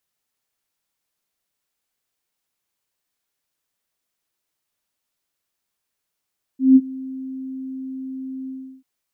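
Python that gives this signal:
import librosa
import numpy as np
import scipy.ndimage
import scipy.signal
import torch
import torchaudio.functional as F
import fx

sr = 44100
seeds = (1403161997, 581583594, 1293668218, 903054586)

y = fx.adsr_tone(sr, wave='sine', hz=263.0, attack_ms=169.0, decay_ms=44.0, sustain_db=-22.5, held_s=1.89, release_ms=350.0, level_db=-5.5)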